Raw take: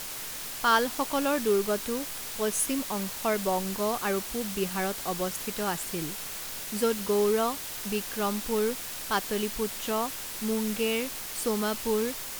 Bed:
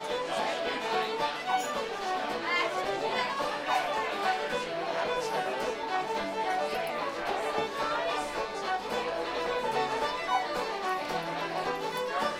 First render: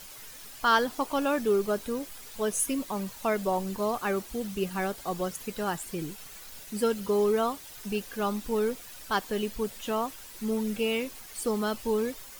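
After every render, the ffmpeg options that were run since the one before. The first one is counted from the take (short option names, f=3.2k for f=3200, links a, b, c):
-af "afftdn=nr=11:nf=-38"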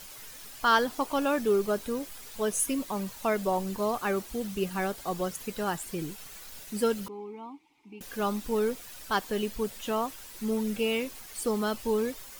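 -filter_complex "[0:a]asettb=1/sr,asplit=3[a][b][c];[a]atrim=end=7.084[d];[b]atrim=start=7.08:end=8.01,asetpts=PTS-STARTPTS,afade=t=in:d=0.004:c=qsin,afade=t=out:st=0.926:d=0.004:c=qsin,asplit=3[e][f][g];[e]bandpass=f=300:t=q:w=8,volume=0dB[h];[f]bandpass=f=870:t=q:w=8,volume=-6dB[i];[g]bandpass=f=2.24k:t=q:w=8,volume=-9dB[j];[h][i][j]amix=inputs=3:normalize=0[k];[c]atrim=start=8.006[l];[d][k]acrossfade=d=0.004:c1=hsin:c2=qsin[m];[m][l]acrossfade=d=0.004:c1=qsin:c2=hsin"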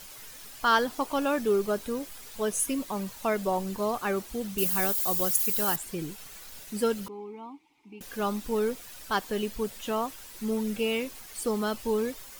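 -filter_complex "[0:a]asettb=1/sr,asplit=3[a][b][c];[a]atrim=end=4.584[d];[b]atrim=start=4.58:end=5.76,asetpts=PTS-STARTPTS,afade=t=in:d=0.004:c=qsin,afade=t=out:st=1.176:d=0.004:c=qsin,aemphasis=mode=production:type=75fm[e];[c]atrim=start=5.756[f];[d][e]acrossfade=d=0.004:c1=hsin:c2=qsin[g];[g][f]acrossfade=d=0.004:c1=qsin:c2=hsin"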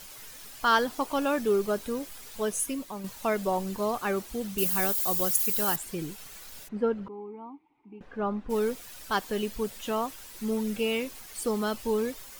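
-filter_complex "[0:a]asplit=3[a][b][c];[a]afade=t=out:st=6.67:d=0.02[d];[b]lowpass=1.4k,afade=t=in:st=6.67:d=0.02,afade=t=out:st=8.49:d=0.02[e];[c]afade=t=in:st=8.49:d=0.02[f];[d][e][f]amix=inputs=3:normalize=0,asplit=2[g][h];[g]atrim=end=3.04,asetpts=PTS-STARTPTS,afade=t=out:st=2.39:d=0.65:silence=0.446684[i];[h]atrim=start=3.04,asetpts=PTS-STARTPTS,afade=t=in:d=0.004:c=hsin:silence=0.446684[j];[i][j]concat=n=2:v=0:a=1"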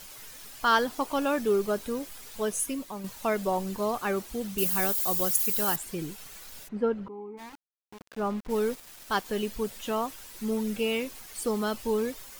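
-filter_complex "[0:a]asplit=3[a][b][c];[a]afade=t=out:st=7.37:d=0.02[d];[b]aeval=exprs='val(0)*gte(abs(val(0)),0.00891)':c=same,afade=t=in:st=7.37:d=0.02,afade=t=out:st=9.24:d=0.02[e];[c]afade=t=in:st=9.24:d=0.02[f];[d][e][f]amix=inputs=3:normalize=0"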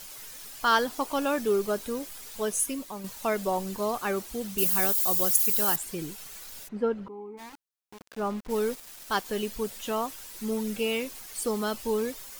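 -af "bass=f=250:g=-2,treble=f=4k:g=3"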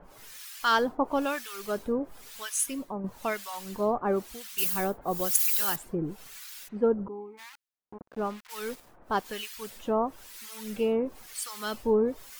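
-filter_complex "[0:a]asplit=2[a][b];[b]adynamicsmooth=sensitivity=3.5:basefreq=5.1k,volume=-2.5dB[c];[a][c]amix=inputs=2:normalize=0,acrossover=split=1200[d][e];[d]aeval=exprs='val(0)*(1-1/2+1/2*cos(2*PI*1*n/s))':c=same[f];[e]aeval=exprs='val(0)*(1-1/2-1/2*cos(2*PI*1*n/s))':c=same[g];[f][g]amix=inputs=2:normalize=0"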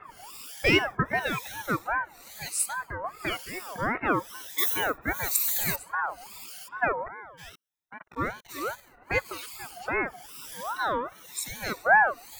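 -af "afftfilt=real='re*pow(10,19/40*sin(2*PI*(1.4*log(max(b,1)*sr/1024/100)/log(2)-(0.31)*(pts-256)/sr)))':imag='im*pow(10,19/40*sin(2*PI*(1.4*log(max(b,1)*sr/1024/100)/log(2)-(0.31)*(pts-256)/sr)))':win_size=1024:overlap=0.75,aeval=exprs='val(0)*sin(2*PI*1000*n/s+1000*0.3/2.5*sin(2*PI*2.5*n/s))':c=same"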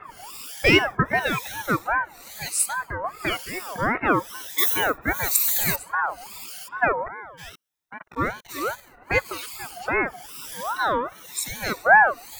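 -af "volume=5dB"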